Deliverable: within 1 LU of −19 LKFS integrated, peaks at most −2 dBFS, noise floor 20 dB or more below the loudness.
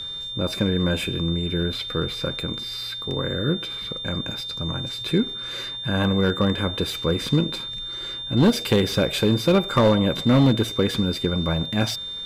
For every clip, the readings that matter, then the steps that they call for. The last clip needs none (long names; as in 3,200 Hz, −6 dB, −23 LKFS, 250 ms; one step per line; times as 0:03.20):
share of clipped samples 0.6%; peaks flattened at −11.0 dBFS; interfering tone 3,600 Hz; level of the tone −30 dBFS; integrated loudness −23.0 LKFS; sample peak −11.0 dBFS; target loudness −19.0 LKFS
→ clipped peaks rebuilt −11 dBFS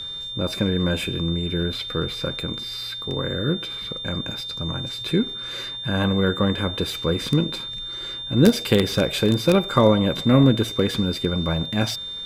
share of clipped samples 0.0%; interfering tone 3,600 Hz; level of the tone −30 dBFS
→ notch filter 3,600 Hz, Q 30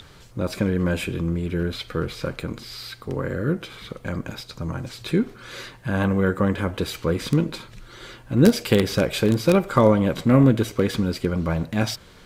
interfering tone none found; integrated loudness −23.0 LKFS; sample peak −2.0 dBFS; target loudness −19.0 LKFS
→ level +4 dB
brickwall limiter −2 dBFS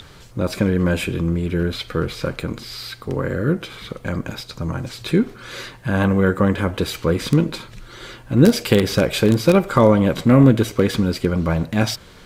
integrated loudness −19.5 LKFS; sample peak −2.0 dBFS; background noise floor −43 dBFS